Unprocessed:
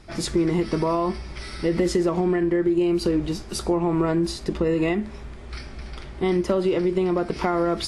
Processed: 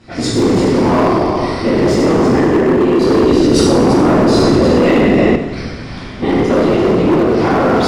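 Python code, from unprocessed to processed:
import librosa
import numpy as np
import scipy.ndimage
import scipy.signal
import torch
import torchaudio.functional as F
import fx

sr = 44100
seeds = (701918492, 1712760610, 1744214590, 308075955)

y = fx.low_shelf(x, sr, hz=260.0, db=3.5)
y = fx.notch_comb(y, sr, f0_hz=420.0)
y = y + 10.0 ** (-7.5 / 20.0) * np.pad(y, (int(339 * sr / 1000.0), 0))[:len(y)]
y = fx.whisperise(y, sr, seeds[0])
y = scipy.signal.sosfilt(scipy.signal.butter(2, 6900.0, 'lowpass', fs=sr, output='sos'), y)
y = fx.rev_plate(y, sr, seeds[1], rt60_s=1.6, hf_ratio=0.85, predelay_ms=0, drr_db=-7.0)
y = np.clip(10.0 ** (11.5 / 20.0) * y, -1.0, 1.0) / 10.0 ** (11.5 / 20.0)
y = fx.low_shelf(y, sr, hz=120.0, db=-6.0)
y = fx.env_flatten(y, sr, amount_pct=100, at=(3.17, 5.36))
y = F.gain(torch.from_numpy(y), 4.5).numpy()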